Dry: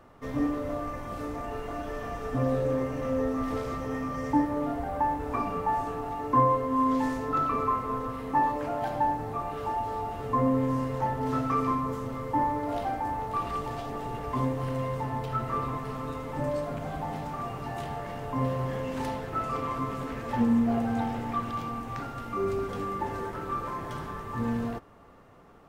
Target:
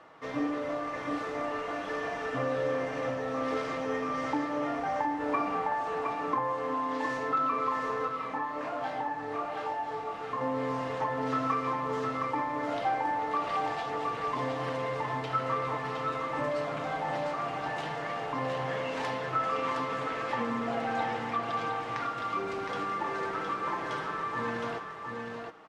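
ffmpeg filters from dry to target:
-filter_complex "[0:a]highpass=f=830:p=1,acompressor=threshold=-32dB:ratio=5,lowpass=4.9k,aecho=1:1:6.3:0.42,aecho=1:1:714:0.596,asettb=1/sr,asplit=3[a][b][c];[a]atrim=end=8.084[d];[b]atrim=start=8.08:end=10.41,asetpts=PTS-STARTPTS,afade=t=in:d=0.004:c=qsin,afade=t=out:st=2.326:d=0.004:c=qsin,flanger=delay=22.5:depth=5.2:speed=1.2[e];[c]atrim=start=10.406[f];[d][e]acrossfade=d=0.004:c1=hsin:c2=qsin[g];[g][f]acrossfade=d=0.004:c1=qsin:c2=hsin,volume=5.5dB"

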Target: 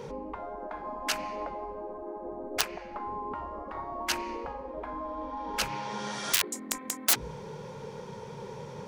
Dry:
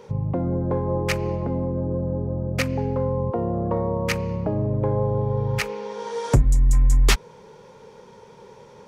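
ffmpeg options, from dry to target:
-filter_complex "[0:a]equalizer=f=140:w=1.5:g=8,aeval=exprs='(mod(2.66*val(0)+1,2)-1)/2.66':c=same,bandreject=f=60:t=h:w=6,bandreject=f=120:t=h:w=6,bandreject=f=180:t=h:w=6,bandreject=f=240:t=h:w=6,bandreject=f=300:t=h:w=6,bandreject=f=360:t=h:w=6,bandreject=f=420:t=h:w=6,asplit=2[a][b];[b]alimiter=limit=-18dB:level=0:latency=1:release=116,volume=-1dB[c];[a][c]amix=inputs=2:normalize=0,asettb=1/sr,asplit=3[d][e][f];[d]atrim=end=2.654[g];[e]atrim=start=2.65:end=3.35,asetpts=PTS-STARTPTS,afade=t=in:d=0.004:c=qsin,afade=t=out:st=0.696:d=0.004:c=qsin,highshelf=f=4.4k:g=-8[h];[f]atrim=start=3.346[i];[g][h]acrossfade=d=0.004:c1=hsin:c2=qsin[j];[j][i]acrossfade=d=0.004:c1=qsin:c2=hsin,afftfilt=real='re*lt(hypot(re,im),0.2)':imag='im*lt(hypot(re,im),0.2)':win_size=1024:overlap=0.75,volume=-2dB"

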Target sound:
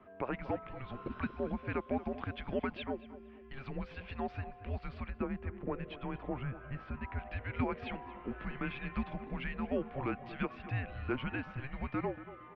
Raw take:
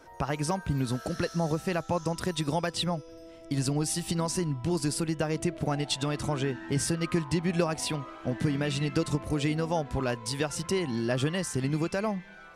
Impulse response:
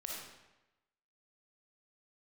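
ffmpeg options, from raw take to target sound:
-filter_complex "[0:a]highpass=f=370:t=q:w=0.5412,highpass=f=370:t=q:w=1.307,lowpass=f=3k:t=q:w=0.5176,lowpass=f=3k:t=q:w=0.7071,lowpass=f=3k:t=q:w=1.932,afreqshift=-270,asettb=1/sr,asplit=3[a][b][c];[a]atrim=end=5.104[d];[b]atrim=start=5.1:end=7.19,asetpts=PTS-STARTPTS,afade=t=in:d=0.004:c=qsin,afade=t=out:st=2.086:d=0.004:c=qsin,highshelf=f=2.1k:g=-11.5[e];[c]atrim=start=7.186[f];[d][e]acrossfade=d=0.004:c1=hsin:c2=qsin[g];[g][f]acrossfade=d=0.004:c1=qsin:c2=hsin,asplit=2[h][i];[i]adelay=232,lowpass=f=2k:p=1,volume=-14dB,asplit=2[j][k];[k]adelay=232,lowpass=f=2k:p=1,volume=0.32,asplit=2[l][m];[m]adelay=232,lowpass=f=2k:p=1,volume=0.32[n];[h][j][l][n]amix=inputs=4:normalize=0,volume=-4dB"

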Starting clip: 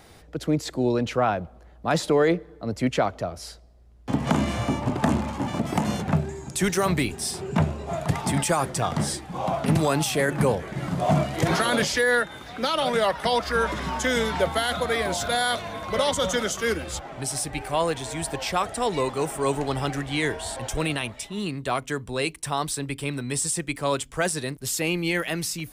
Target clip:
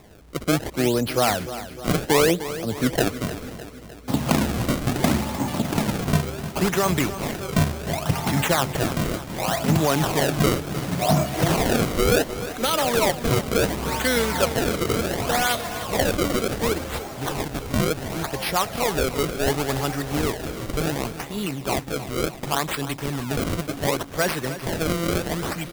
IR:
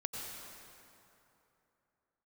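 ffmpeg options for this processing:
-af "acrusher=samples=29:mix=1:aa=0.000001:lfo=1:lforange=46.4:lforate=0.69,highshelf=f=5.2k:g=4,aecho=1:1:304|608|912|1216|1520|1824:0.224|0.13|0.0753|0.0437|0.0253|0.0147,volume=1.5dB"

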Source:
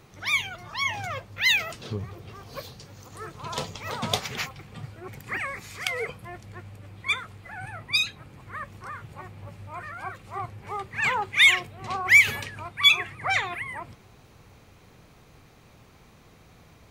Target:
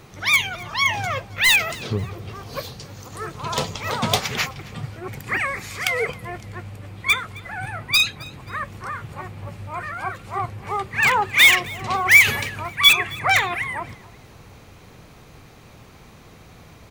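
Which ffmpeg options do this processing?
-filter_complex "[0:a]asplit=2[a][b];[b]aeval=exprs='(mod(6.31*val(0)+1,2)-1)/6.31':c=same,volume=-6dB[c];[a][c]amix=inputs=2:normalize=0,aecho=1:1:266|532:0.075|0.027,volume=4dB"

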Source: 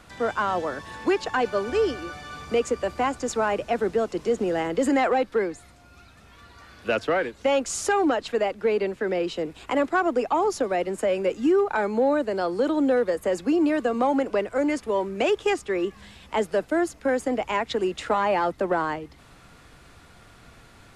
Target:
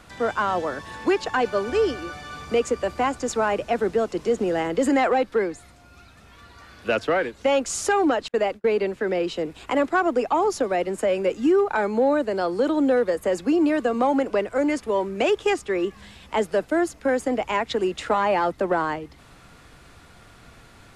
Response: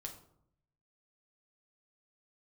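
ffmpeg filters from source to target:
-filter_complex "[0:a]asettb=1/sr,asplit=3[a][b][c];[a]atrim=end=8.284[d];[b]atrim=start=8.28:end=8.83,asetpts=PTS-STARTPTS,afade=t=in:d=0.004:c=qsin,afade=t=out:st=0.546:d=0.004:c=qsin,agate=range=-37dB:threshold=-32dB:ratio=16:detection=peak[e];[c]atrim=start=8.826[f];[d][e]acrossfade=d=0.004:c1=hsin:c2=qsin[g];[g][f]acrossfade=d=0.004:c1=qsin:c2=hsin,volume=1.5dB"

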